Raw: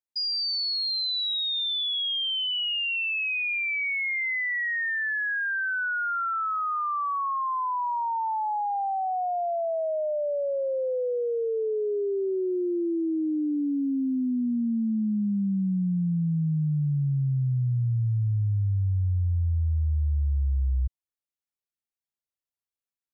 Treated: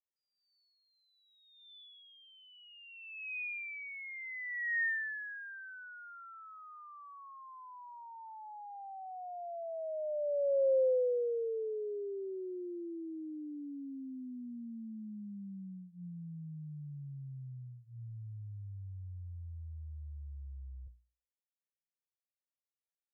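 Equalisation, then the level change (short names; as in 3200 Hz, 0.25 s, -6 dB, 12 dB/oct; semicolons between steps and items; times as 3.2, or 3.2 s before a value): vocal tract filter e; notches 60/120/180 Hz; 0.0 dB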